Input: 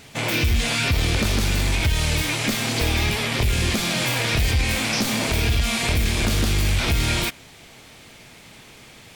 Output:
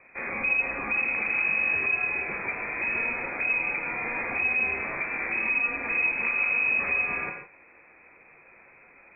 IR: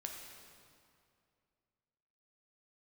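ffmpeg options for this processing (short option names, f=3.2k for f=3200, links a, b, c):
-filter_complex "[1:a]atrim=start_sample=2205,atrim=end_sample=6174,asetrate=35721,aresample=44100[a];[0:a][a]afir=irnorm=-1:irlink=0,lowpass=f=2.2k:t=q:w=0.5098,lowpass=f=2.2k:t=q:w=0.6013,lowpass=f=2.2k:t=q:w=0.9,lowpass=f=2.2k:t=q:w=2.563,afreqshift=-2600,volume=-4dB"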